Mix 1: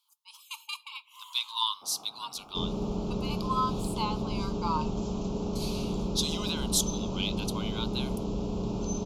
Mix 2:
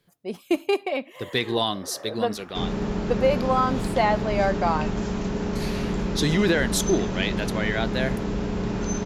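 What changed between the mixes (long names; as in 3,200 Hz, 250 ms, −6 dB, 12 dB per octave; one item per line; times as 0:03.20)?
speech: remove linear-phase brick-wall high-pass 860 Hz
second sound +5.0 dB
master: remove Butterworth band-reject 1,800 Hz, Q 0.99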